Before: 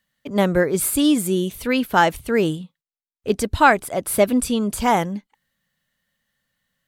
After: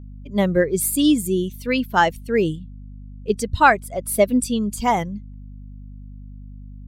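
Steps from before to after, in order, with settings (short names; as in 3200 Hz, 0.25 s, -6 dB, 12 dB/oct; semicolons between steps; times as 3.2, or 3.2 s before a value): per-bin expansion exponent 1.5; hum 50 Hz, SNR 16 dB; gain +1.5 dB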